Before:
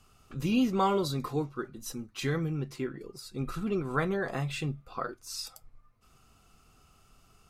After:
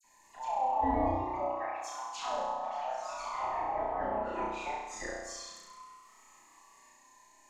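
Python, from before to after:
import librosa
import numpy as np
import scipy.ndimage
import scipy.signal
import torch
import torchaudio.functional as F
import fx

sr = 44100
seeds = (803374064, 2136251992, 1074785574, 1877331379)

p1 = fx.band_invert(x, sr, width_hz=1000)
p2 = fx.highpass(p1, sr, hz=240.0, slope=24, at=(1.15, 2.15))
p3 = fx.echo_pitch(p2, sr, ms=201, semitones=2, count=3, db_per_echo=-3.0)
p4 = fx.peak_eq(p3, sr, hz=6800.0, db=13.5, octaves=0.33)
p5 = fx.env_lowpass_down(p4, sr, base_hz=780.0, full_db=-24.5)
p6 = fx.dispersion(p5, sr, late='lows', ms=42.0, hz=2900.0)
p7 = p6 + fx.room_flutter(p6, sr, wall_m=5.7, rt60_s=1.1, dry=0)
y = F.gain(torch.from_numpy(p7), -7.0).numpy()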